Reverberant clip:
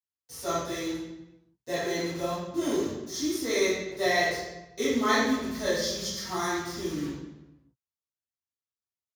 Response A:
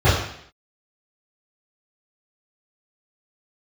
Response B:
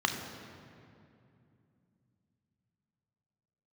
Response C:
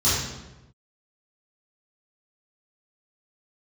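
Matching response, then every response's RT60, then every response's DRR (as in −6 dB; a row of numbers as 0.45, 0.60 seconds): C; 0.65, 2.6, 1.0 seconds; −15.5, 3.5, −13.0 decibels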